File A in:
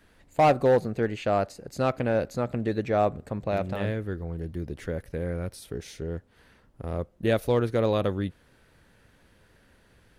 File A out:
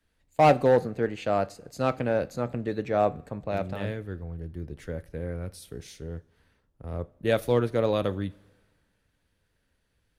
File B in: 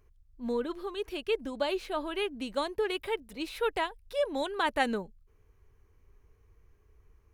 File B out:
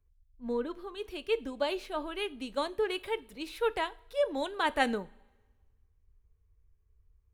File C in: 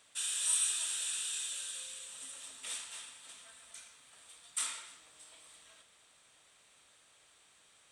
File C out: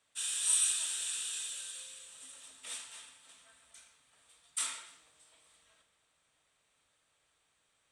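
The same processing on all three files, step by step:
coupled-rooms reverb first 0.37 s, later 2.1 s, from −18 dB, DRR 14.5 dB
multiband upward and downward expander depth 40%
level −1.5 dB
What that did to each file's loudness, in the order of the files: 0.0, −0.5, +2.0 LU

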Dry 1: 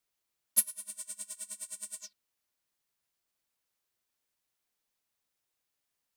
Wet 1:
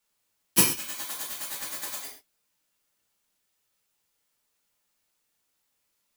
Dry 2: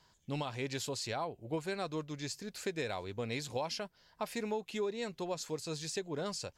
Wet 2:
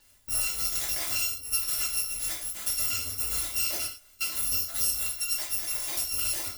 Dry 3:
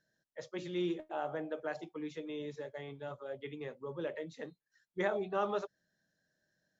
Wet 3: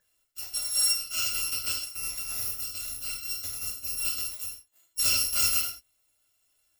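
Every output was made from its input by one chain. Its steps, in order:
samples in bit-reversed order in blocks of 256 samples
reverb whose tail is shaped and stops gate 160 ms falling, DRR −3 dB
loudness normalisation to −27 LKFS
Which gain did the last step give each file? +3.0, +3.5, +4.0 decibels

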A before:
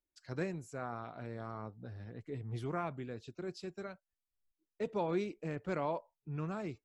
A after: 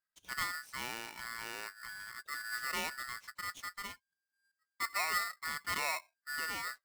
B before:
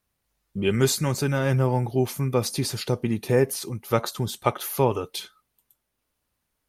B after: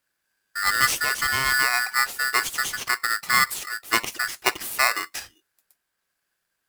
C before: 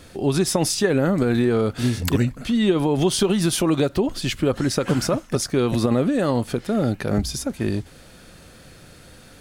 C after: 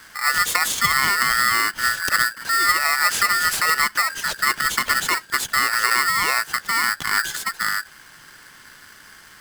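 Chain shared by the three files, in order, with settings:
ring modulator with a square carrier 1,600 Hz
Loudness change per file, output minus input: +2.5, +2.5, +2.5 LU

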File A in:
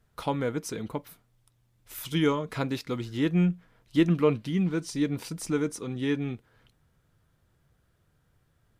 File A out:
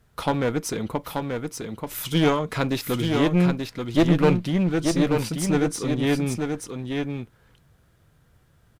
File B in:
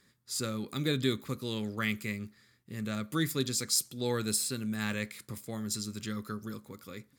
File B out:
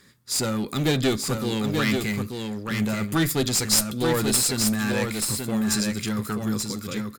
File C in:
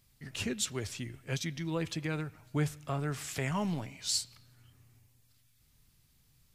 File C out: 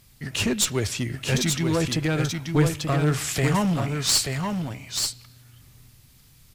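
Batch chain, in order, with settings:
asymmetric clip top −32.5 dBFS
on a send: single-tap delay 883 ms −5 dB
on the sum: loudness normalisation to −24 LKFS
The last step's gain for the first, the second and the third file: +7.0, +11.0, +12.5 decibels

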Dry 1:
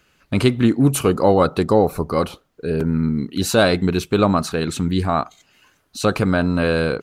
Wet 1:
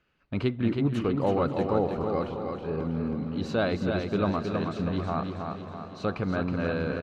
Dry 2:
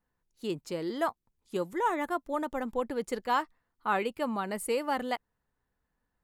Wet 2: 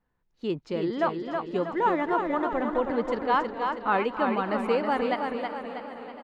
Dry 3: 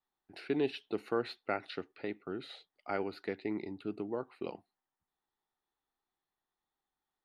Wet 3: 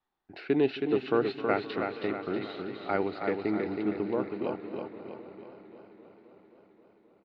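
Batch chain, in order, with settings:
high-frequency loss of the air 210 metres
on a send: repeating echo 321 ms, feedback 49%, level −5 dB
on the sum: feedback echo with a swinging delay time 264 ms, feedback 78%, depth 90 cents, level −16 dB
normalise the peak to −12 dBFS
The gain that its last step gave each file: −10.5, +5.0, +7.0 decibels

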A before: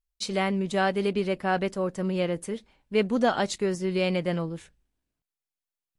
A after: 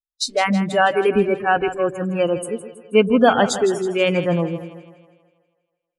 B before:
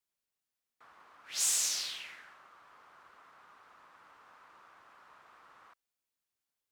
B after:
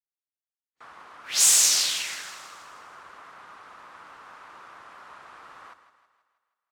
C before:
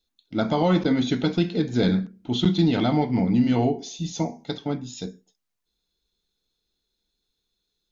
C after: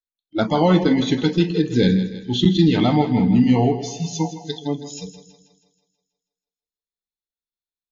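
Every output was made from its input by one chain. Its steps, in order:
noise reduction from a noise print of the clip's start 29 dB
echo with a time of its own for lows and highs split 490 Hz, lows 122 ms, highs 161 ms, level −12 dB
loudness normalisation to −19 LKFS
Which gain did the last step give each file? +10.0, +12.0, +4.5 decibels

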